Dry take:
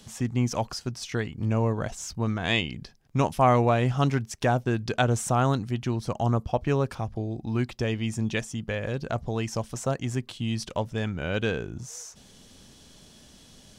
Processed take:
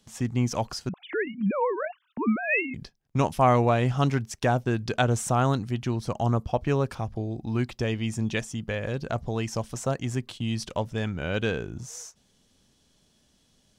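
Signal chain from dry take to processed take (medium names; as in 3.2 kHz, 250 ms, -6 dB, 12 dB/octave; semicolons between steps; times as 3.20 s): 0.89–2.74 s: formants replaced by sine waves; gate -42 dBFS, range -13 dB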